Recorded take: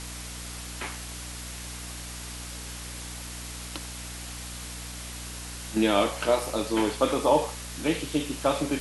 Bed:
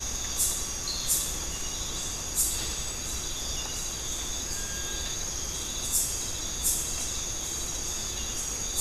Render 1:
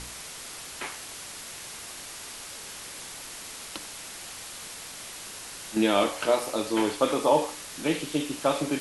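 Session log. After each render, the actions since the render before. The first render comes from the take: de-hum 60 Hz, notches 5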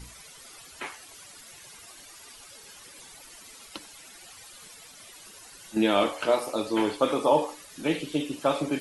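noise reduction 13 dB, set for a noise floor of -41 dBFS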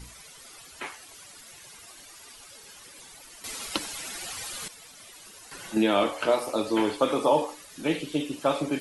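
3.44–4.68 s: gain +11 dB; 5.51–7.42 s: three bands compressed up and down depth 40%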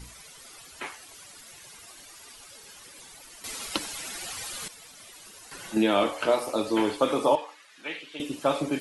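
7.35–8.20 s: band-pass filter 2 kHz, Q 1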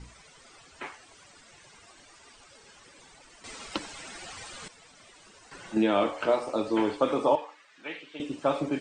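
Chebyshev low-pass 9 kHz, order 8; treble shelf 2.7 kHz -8.5 dB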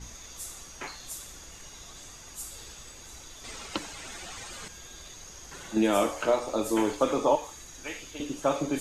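add bed -14 dB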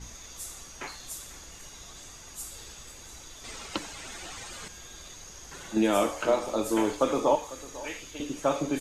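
delay 498 ms -18 dB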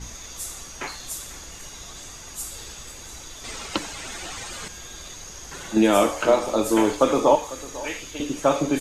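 trim +6.5 dB

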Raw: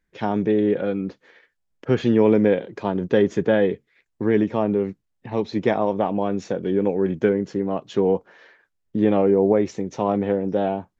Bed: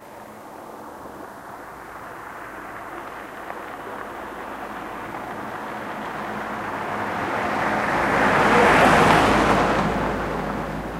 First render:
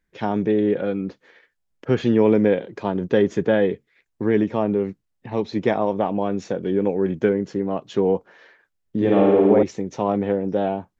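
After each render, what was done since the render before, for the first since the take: 8.96–9.63 s: flutter echo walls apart 9.4 m, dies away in 1.4 s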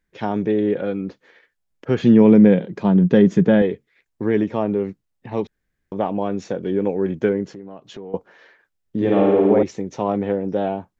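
2.02–3.62 s: peaking EQ 180 Hz +14 dB; 5.47–5.92 s: room tone; 7.47–8.14 s: compression 3:1, threshold -37 dBFS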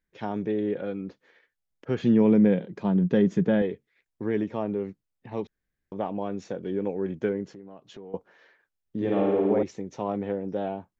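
trim -8 dB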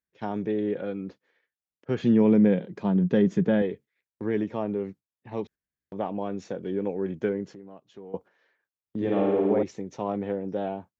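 gate -45 dBFS, range -10 dB; high-pass 61 Hz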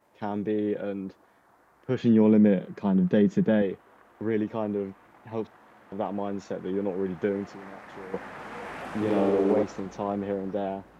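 add bed -23.5 dB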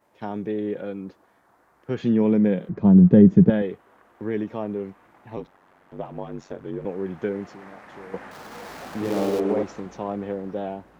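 2.69–3.50 s: tilt EQ -4.5 dB/octave; 5.36–6.85 s: ring modulator 47 Hz; 8.31–9.40 s: dead-time distortion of 0.14 ms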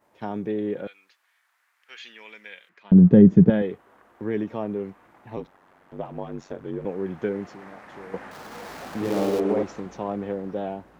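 0.87–2.92 s: resonant high-pass 2.3 kHz, resonance Q 1.5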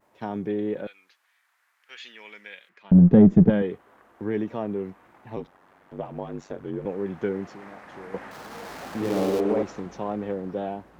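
single-diode clipper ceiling -4 dBFS; vibrato 1.6 Hz 52 cents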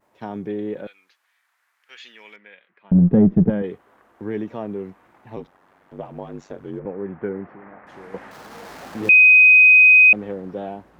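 2.36–3.64 s: distance through air 420 m; 6.79–7.87 s: low-pass 2.1 kHz 24 dB/octave; 9.09–10.13 s: bleep 2.51 kHz -7 dBFS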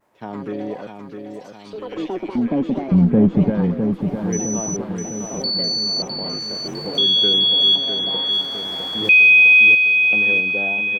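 ever faster or slower copies 168 ms, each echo +5 st, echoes 3, each echo -6 dB; feedback delay 656 ms, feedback 57%, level -6.5 dB

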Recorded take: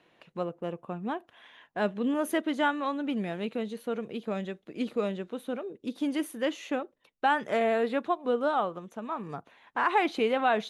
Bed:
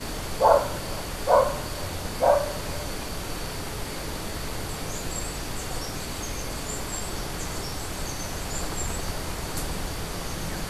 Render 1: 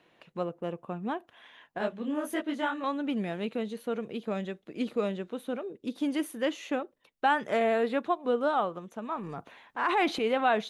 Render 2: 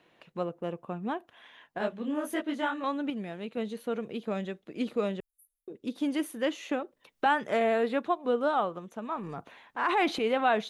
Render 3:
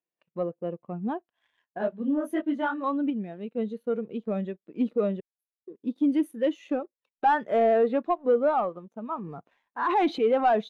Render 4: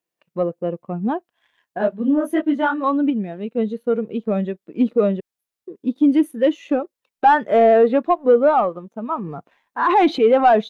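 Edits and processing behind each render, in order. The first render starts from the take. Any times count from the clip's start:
1.78–2.84 s: detune thickener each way 57 cents; 9.16–10.27 s: transient shaper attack -6 dB, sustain +6 dB
3.10–3.57 s: gain -5 dB; 5.20–5.68 s: inverse Chebyshev band-stop 150–2500 Hz, stop band 80 dB; 6.69–7.26 s: three bands compressed up and down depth 70%
waveshaping leveller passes 2; spectral contrast expander 1.5:1
trim +8.5 dB

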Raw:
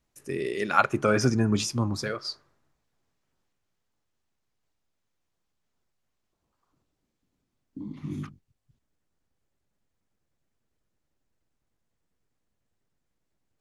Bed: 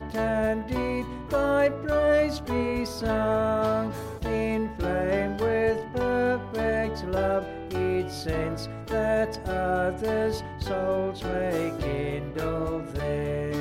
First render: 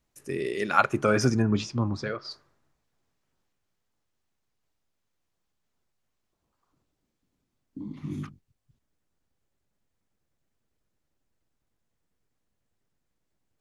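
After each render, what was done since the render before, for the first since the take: 1.42–2.31 s: distance through air 150 m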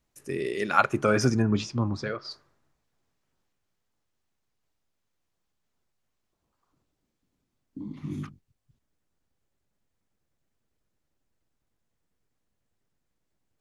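no audible change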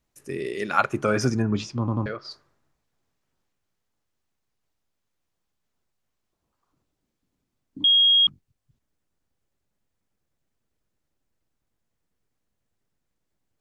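1.79 s: stutter in place 0.09 s, 3 plays; 7.84–8.27 s: bleep 3.27 kHz -14 dBFS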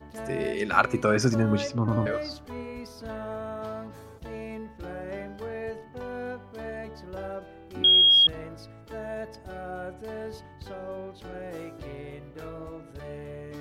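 add bed -11 dB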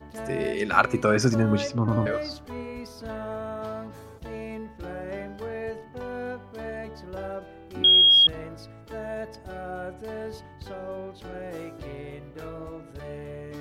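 trim +1.5 dB

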